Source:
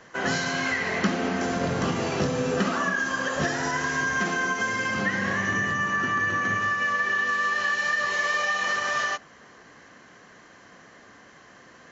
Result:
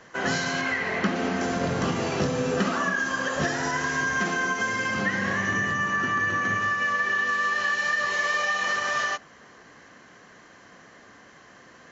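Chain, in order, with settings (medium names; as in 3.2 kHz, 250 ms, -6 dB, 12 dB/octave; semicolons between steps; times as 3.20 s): 0.61–1.16 s: tone controls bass -2 dB, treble -7 dB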